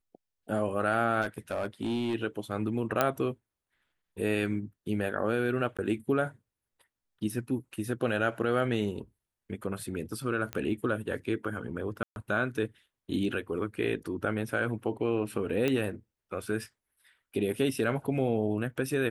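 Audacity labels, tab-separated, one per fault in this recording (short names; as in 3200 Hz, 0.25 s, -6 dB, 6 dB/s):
1.210000	2.150000	clipped -26.5 dBFS
3.010000	3.010000	pop -10 dBFS
5.770000	5.790000	gap 16 ms
10.530000	10.530000	pop -19 dBFS
12.030000	12.160000	gap 0.131 s
15.680000	15.680000	pop -15 dBFS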